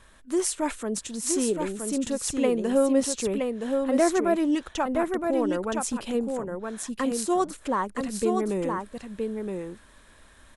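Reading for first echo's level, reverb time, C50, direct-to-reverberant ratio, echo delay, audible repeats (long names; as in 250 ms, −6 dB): −4.5 dB, no reverb audible, no reverb audible, no reverb audible, 969 ms, 1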